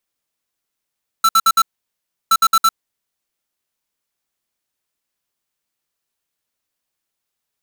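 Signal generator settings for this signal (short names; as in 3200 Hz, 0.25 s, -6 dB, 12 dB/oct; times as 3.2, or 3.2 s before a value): beep pattern square 1330 Hz, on 0.05 s, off 0.06 s, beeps 4, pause 0.69 s, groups 2, -11.5 dBFS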